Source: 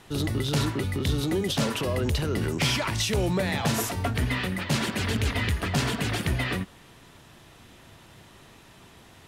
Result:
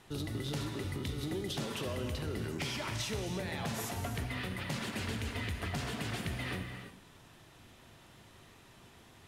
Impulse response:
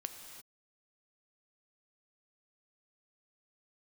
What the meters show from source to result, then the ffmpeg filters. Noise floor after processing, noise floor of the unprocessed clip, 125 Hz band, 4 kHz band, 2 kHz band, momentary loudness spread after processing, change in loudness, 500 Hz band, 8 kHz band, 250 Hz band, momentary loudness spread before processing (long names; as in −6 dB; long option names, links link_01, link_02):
−58 dBFS, −52 dBFS, −11.0 dB, −10.5 dB, −10.0 dB, 21 LU, −11.0 dB, −10.5 dB, −10.5 dB, −10.5 dB, 3 LU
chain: -filter_complex "[0:a]acompressor=threshold=-27dB:ratio=6[link_01];[1:a]atrim=start_sample=2205[link_02];[link_01][link_02]afir=irnorm=-1:irlink=0,volume=-4.5dB"